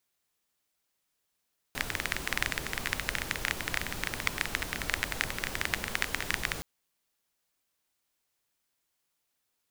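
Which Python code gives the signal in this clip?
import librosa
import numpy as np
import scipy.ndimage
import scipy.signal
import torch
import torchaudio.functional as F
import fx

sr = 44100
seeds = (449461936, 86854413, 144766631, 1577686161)

y = fx.rain(sr, seeds[0], length_s=4.87, drops_per_s=17.0, hz=1900.0, bed_db=-2.5)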